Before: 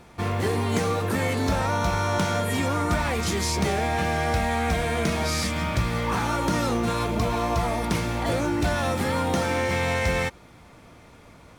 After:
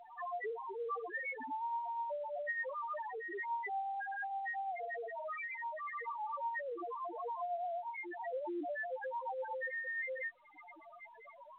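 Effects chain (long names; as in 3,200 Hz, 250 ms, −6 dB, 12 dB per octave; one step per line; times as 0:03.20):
elliptic band-pass filter 280–2,000 Hz, stop band 80 dB
spectral tilt +4.5 dB per octave
notch filter 1,400 Hz, Q 5.9
downward compressor 6 to 1, threshold −43 dBFS, peak gain reduction 18 dB
spectral peaks only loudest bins 1
amplitude tremolo 8.5 Hz, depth 30%
level +16 dB
mu-law 64 kbit/s 8,000 Hz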